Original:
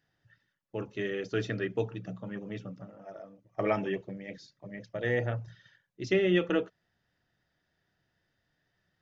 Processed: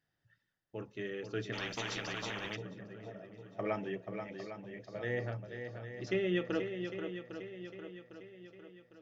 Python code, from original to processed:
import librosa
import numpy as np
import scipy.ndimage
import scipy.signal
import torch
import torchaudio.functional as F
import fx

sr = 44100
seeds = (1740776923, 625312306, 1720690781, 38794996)

y = fx.echo_swing(x, sr, ms=804, ratio=1.5, feedback_pct=45, wet_db=-7.5)
y = fx.spectral_comp(y, sr, ratio=4.0, at=(1.52, 2.55), fade=0.02)
y = y * 10.0 ** (-7.0 / 20.0)